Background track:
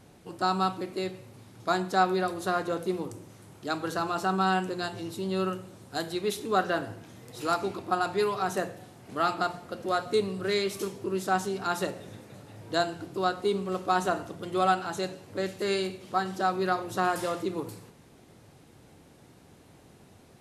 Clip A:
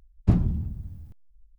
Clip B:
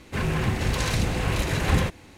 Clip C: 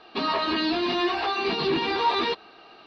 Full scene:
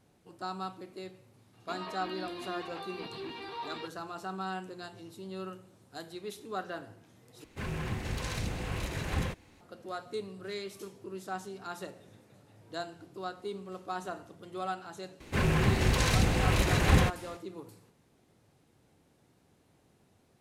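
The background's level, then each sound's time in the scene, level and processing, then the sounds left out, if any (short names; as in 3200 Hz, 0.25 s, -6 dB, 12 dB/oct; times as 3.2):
background track -11.5 dB
1.53 add C -17 dB
7.44 replace with B -10.5 dB
15.2 add B -1.5 dB
not used: A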